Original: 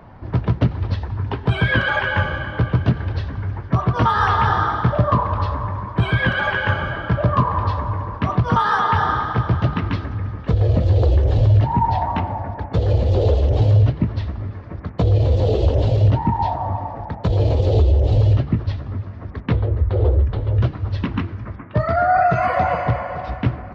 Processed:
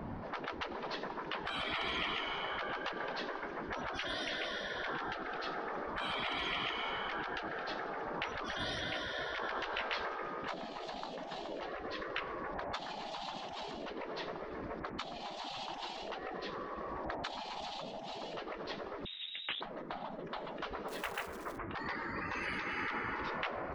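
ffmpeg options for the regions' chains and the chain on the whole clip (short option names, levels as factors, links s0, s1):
-filter_complex "[0:a]asettb=1/sr,asplit=3[s0][s1][s2];[s0]atrim=end=9.034[s3];[s1]atrim=start=9.03:end=11.72,asetpts=PTS-STARTPTS,afade=t=in:d=0.004:c=qsin,afade=t=out:st=2.686:d=0.004:c=qsin,asplit=2[s4][s5];[s5]adelay=17,volume=0.501[s6];[s4][s6]amix=inputs=2:normalize=0,atrim=end_sample=118629,acompressor=threshold=0.2:ratio=6:attack=3.2:release=140:knee=1:detection=peak[s7];[s2]atrim=start=11.716[s8];[s3][s7]acrossfade=d=0.004:c1=hsin:c2=qsin[s9];[s9][s8]acrossfade=d=0.004:c1=qsin:c2=hsin,asettb=1/sr,asplit=3[s10][s11][s12];[s10]atrim=end=19.054[s13];[s11]atrim=start=19.05:end=19.61,asetpts=PTS-STARTPTS,afade=t=in:d=0.004:c=qsin,afade=t=out:st=0.556:d=0.004:c=qsin,aeval=exprs='(tanh(5.01*val(0)+0.7)-tanh(0.7))/5.01':c=same,lowpass=f=3300:t=q:w=0.5098,lowpass=f=3300:t=q:w=0.6013,lowpass=f=3300:t=q:w=0.9,lowpass=f=3300:t=q:w=2.563,afreqshift=-3900[s14];[s12]atrim=start=19.606[s15];[s13][s14]acrossfade=d=0.004:c1=hsin:c2=qsin[s16];[s16][s15]acrossfade=d=0.004:c1=qsin:c2=hsin,asettb=1/sr,asplit=3[s17][s18][s19];[s17]atrim=end=20.884[s20];[s18]atrim=start=20.88:end=21.58,asetpts=PTS-STARTPTS,afade=t=in:d=0.004:c=qsin,afade=t=out:st=0.696:d=0.004:c=qsin,aemphasis=mode=reproduction:type=75fm,acrusher=bits=7:mode=log:mix=0:aa=0.000001[s21];[s19]atrim=start=21.576[s22];[s20][s21]acrossfade=d=0.004:c1=hsin:c2=qsin[s23];[s23][s22]acrossfade=d=0.004:c1=qsin:c2=hsin,acompressor=threshold=0.126:ratio=3,equalizer=f=240:w=0.99:g=8.5,afftfilt=real='re*lt(hypot(re,im),0.1)':imag='im*lt(hypot(re,im),0.1)':win_size=1024:overlap=0.75,volume=0.794"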